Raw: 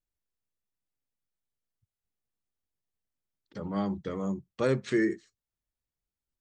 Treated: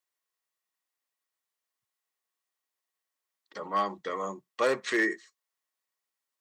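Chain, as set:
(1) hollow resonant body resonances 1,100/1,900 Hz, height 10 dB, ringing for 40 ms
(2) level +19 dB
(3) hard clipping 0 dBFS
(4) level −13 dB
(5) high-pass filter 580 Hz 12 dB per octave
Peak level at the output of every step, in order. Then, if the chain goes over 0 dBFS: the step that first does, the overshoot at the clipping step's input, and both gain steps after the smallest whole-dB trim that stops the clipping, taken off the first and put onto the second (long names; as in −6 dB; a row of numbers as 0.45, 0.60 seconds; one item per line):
−14.0, +5.0, 0.0, −13.0, −14.0 dBFS
step 2, 5.0 dB
step 2 +14 dB, step 4 −8 dB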